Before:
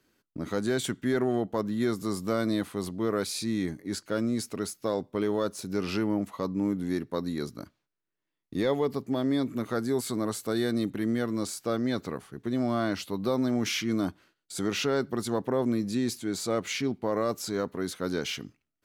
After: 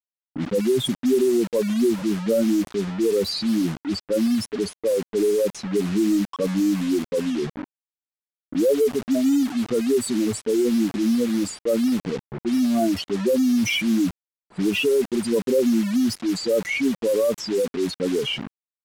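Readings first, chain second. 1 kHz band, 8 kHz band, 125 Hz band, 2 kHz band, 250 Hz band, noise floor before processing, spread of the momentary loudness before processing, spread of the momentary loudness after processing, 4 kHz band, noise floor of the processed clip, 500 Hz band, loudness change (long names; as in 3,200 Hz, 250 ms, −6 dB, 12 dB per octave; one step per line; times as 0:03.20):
−2.0 dB, +4.5 dB, +2.5 dB, +5.5 dB, +8.0 dB, −85 dBFS, 6 LU, 7 LU, +6.5 dB, below −85 dBFS, +8.0 dB, +7.5 dB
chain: expanding power law on the bin magnitudes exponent 3.8
bit reduction 7 bits
low-pass that shuts in the quiet parts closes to 600 Hz, open at −27 dBFS
level +8.5 dB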